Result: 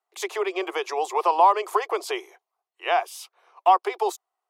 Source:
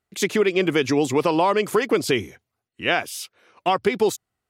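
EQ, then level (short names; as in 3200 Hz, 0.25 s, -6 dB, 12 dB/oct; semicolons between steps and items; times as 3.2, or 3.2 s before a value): steep high-pass 350 Hz 96 dB/oct; band shelf 900 Hz +12 dB 1 oct; -7.0 dB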